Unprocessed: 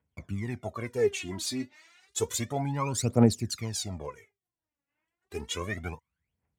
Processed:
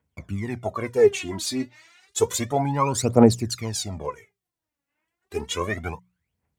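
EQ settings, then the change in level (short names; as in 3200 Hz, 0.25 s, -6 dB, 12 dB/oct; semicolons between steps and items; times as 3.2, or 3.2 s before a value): notches 60/120/180 Hz; dynamic EQ 970 Hz, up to +5 dB, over -46 dBFS, Q 1.4; dynamic EQ 450 Hz, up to +4 dB, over -38 dBFS, Q 1; +4.5 dB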